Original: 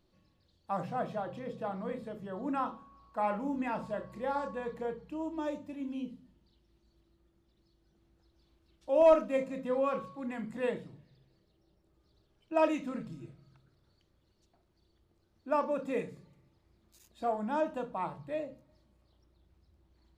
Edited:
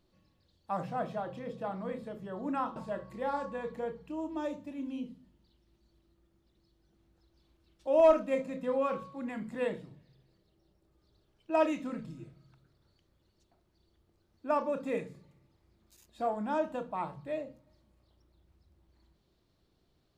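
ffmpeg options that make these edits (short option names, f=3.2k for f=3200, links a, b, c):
-filter_complex "[0:a]asplit=2[a][b];[a]atrim=end=2.762[c];[b]atrim=start=3.778[d];[c][d]acrossfade=d=0.004:c1=hsin:c2=hsin"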